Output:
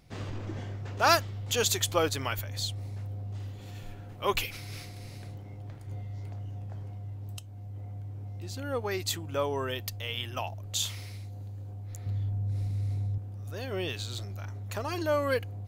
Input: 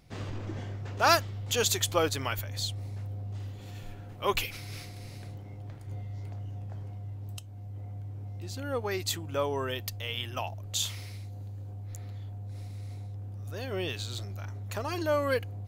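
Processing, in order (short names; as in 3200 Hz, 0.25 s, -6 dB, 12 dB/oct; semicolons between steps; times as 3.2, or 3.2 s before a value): 12.06–13.18 low shelf 260 Hz +10.5 dB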